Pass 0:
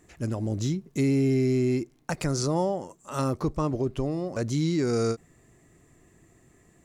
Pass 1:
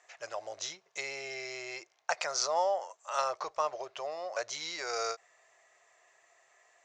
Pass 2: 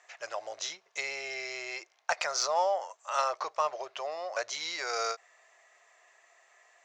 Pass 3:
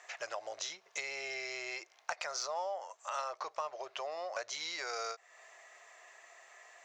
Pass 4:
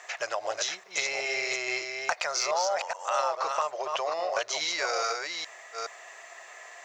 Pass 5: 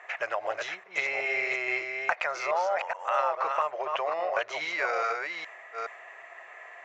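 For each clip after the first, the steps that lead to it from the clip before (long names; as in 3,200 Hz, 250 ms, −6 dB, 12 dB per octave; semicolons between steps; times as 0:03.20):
elliptic band-pass filter 630–6,300 Hz, stop band 40 dB; level +2.5 dB
low-shelf EQ 66 Hz −8.5 dB; mid-hump overdrive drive 8 dB, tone 5,500 Hz, clips at −13 dBFS
downward compressor 3 to 1, threshold −45 dBFS, peak gain reduction 16 dB; level +5 dB
delay that plays each chunk backwards 419 ms, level −4 dB; level +9 dB
high shelf with overshoot 3,400 Hz −13.5 dB, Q 1.5; one half of a high-frequency compander decoder only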